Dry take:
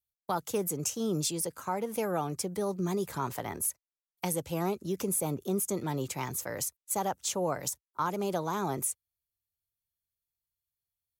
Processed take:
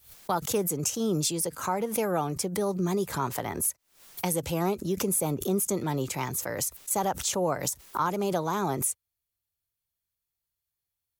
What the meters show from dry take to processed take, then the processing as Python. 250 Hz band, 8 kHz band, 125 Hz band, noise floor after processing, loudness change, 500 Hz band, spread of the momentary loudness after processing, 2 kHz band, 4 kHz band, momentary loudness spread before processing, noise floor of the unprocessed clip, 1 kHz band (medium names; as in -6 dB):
+4.0 dB, +4.0 dB, +4.0 dB, under -85 dBFS, +4.0 dB, +3.5 dB, 4 LU, +4.5 dB, +4.5 dB, 4 LU, under -85 dBFS, +4.0 dB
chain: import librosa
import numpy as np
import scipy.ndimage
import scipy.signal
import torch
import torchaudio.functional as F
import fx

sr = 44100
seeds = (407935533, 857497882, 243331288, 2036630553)

y = fx.pre_swell(x, sr, db_per_s=120.0)
y = y * 10.0 ** (3.5 / 20.0)